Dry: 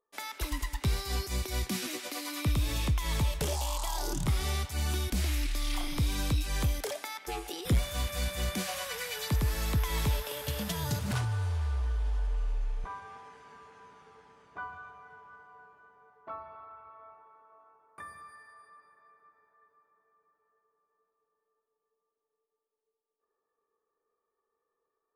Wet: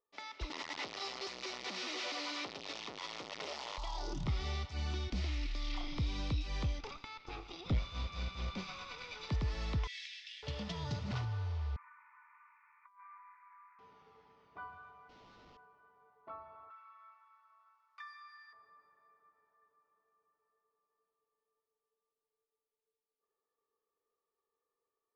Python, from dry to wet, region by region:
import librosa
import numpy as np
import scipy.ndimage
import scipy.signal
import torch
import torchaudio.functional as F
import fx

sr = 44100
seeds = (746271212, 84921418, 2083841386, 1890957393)

y = fx.chain(x, sr, fx.clip_1bit(),
    fx.highpass(hz=400.0, slope=12), at=(0.5, 3.78))
y = fx.chain(y, sr, fx.lower_of_two(delay_ms=0.81),
    fx.lowpass(hz=5900.0, slope=12),
    fx.peak_eq(hz=540.0, db=4.5, octaves=0.26), at=(6.79, 9.29))
y = fx.chain(y, sr, fx.steep_highpass(hz=1700.0, slope=72),
    fx.comb(ms=4.2, depth=0.31),
    fx.doppler_dist(depth_ms=0.25), at=(9.87, 10.43))
y = fx.chain(y, sr, fx.cheby1_bandpass(low_hz=940.0, high_hz=2400.0, order=5),
    fx.over_compress(threshold_db=-48.0, ratio=-0.5), at=(11.76, 13.79))
y = fx.chain(y, sr, fx.cvsd(bps=16000),
    fx.highpass(hz=110.0, slope=12),
    fx.schmitt(flips_db=-55.0), at=(15.09, 15.57))
y = fx.chain(y, sr, fx.highpass(hz=1100.0, slope=24),
    fx.peak_eq(hz=5100.0, db=12.0, octaves=2.7), at=(16.7, 18.53))
y = scipy.signal.sosfilt(scipy.signal.butter(6, 5500.0, 'lowpass', fs=sr, output='sos'), y)
y = fx.notch(y, sr, hz=1600.0, q=7.7)
y = F.gain(torch.from_numpy(y), -6.5).numpy()